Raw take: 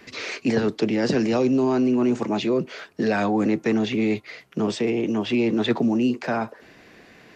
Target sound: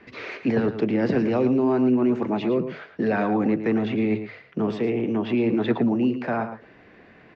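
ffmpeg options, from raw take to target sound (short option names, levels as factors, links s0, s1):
-filter_complex "[0:a]lowpass=2300,equalizer=f=91:t=o:w=0.94:g=3.5,bandreject=f=50:t=h:w=6,bandreject=f=100:t=h:w=6,bandreject=f=150:t=h:w=6,asplit=2[s0][s1];[s1]adelay=110.8,volume=0.316,highshelf=f=4000:g=-2.49[s2];[s0][s2]amix=inputs=2:normalize=0,volume=0.891"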